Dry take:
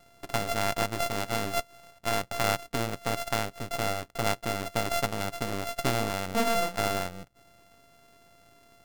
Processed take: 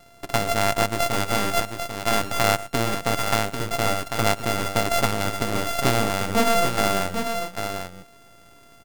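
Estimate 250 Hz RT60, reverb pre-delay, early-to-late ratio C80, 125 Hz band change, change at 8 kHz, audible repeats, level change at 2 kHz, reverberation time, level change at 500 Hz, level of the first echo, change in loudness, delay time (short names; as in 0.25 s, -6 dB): none, none, none, +7.0 dB, +7.5 dB, 2, +7.0 dB, none, +6.5 dB, -19.5 dB, +6.5 dB, 0.116 s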